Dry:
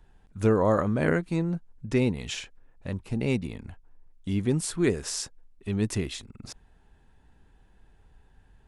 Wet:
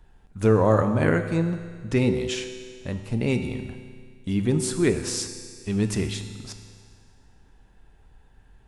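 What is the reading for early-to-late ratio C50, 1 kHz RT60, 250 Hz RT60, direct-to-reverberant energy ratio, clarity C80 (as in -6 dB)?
8.5 dB, 1.9 s, 1.9 s, 7.0 dB, 9.5 dB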